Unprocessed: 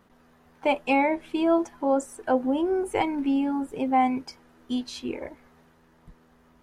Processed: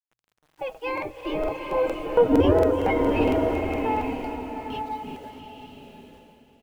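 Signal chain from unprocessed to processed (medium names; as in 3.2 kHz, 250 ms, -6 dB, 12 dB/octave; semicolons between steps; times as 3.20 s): Doppler pass-by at 2.38 s, 21 m/s, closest 4.6 m; in parallel at -1 dB: compression 10:1, threshold -41 dBFS, peak gain reduction 21 dB; on the sum: low-pass 2.3 kHz 12 dB/octave; formant-preserving pitch shift +10 st; bit crusher 11-bit; hum notches 60/120 Hz; on a send: feedback delay 345 ms, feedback 51%, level -10.5 dB; on the sum: crackling interface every 0.23 s, samples 2048, repeat, from 0.47 s; swelling reverb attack 900 ms, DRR 3.5 dB; trim +7 dB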